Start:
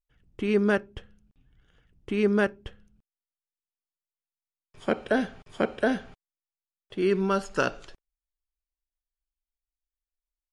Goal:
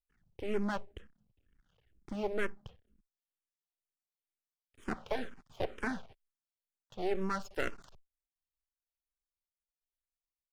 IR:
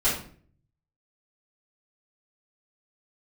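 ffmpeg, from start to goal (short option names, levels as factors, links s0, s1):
-filter_complex "[0:a]aeval=exprs='max(val(0),0)':c=same,asplit=2[s0][s1];[s1]afreqshift=-2.1[s2];[s0][s2]amix=inputs=2:normalize=1,volume=0.708"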